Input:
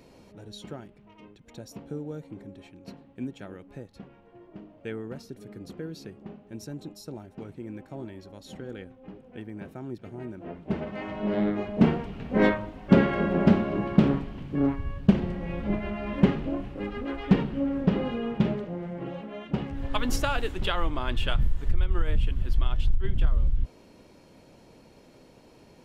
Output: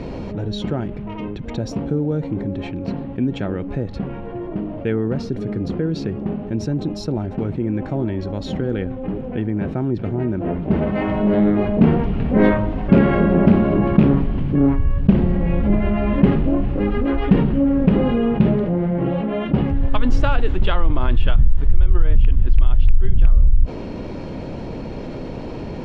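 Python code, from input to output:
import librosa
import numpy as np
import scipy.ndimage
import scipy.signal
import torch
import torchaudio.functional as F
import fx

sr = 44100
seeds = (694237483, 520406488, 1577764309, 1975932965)

y = fx.rattle_buzz(x, sr, strikes_db=-17.0, level_db=-21.0)
y = scipy.signal.sosfilt(scipy.signal.butter(2, 4500.0, 'lowpass', fs=sr, output='sos'), y)
y = fx.tilt_eq(y, sr, slope=-2.0)
y = fx.env_flatten(y, sr, amount_pct=50)
y = y * 10.0 ** (-1.5 / 20.0)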